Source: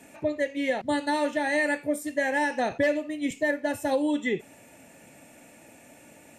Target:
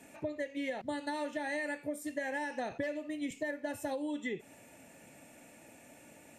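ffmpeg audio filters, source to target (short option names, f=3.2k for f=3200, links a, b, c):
-af "acompressor=threshold=-29dB:ratio=6,volume=-4.5dB"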